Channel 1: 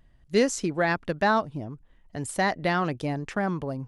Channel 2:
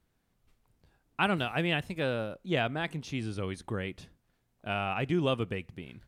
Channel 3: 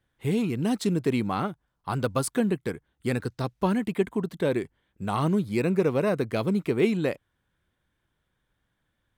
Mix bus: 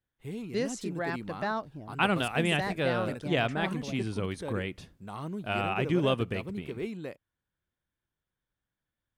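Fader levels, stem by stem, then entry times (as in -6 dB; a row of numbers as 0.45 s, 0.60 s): -9.5 dB, +1.5 dB, -13.0 dB; 0.20 s, 0.80 s, 0.00 s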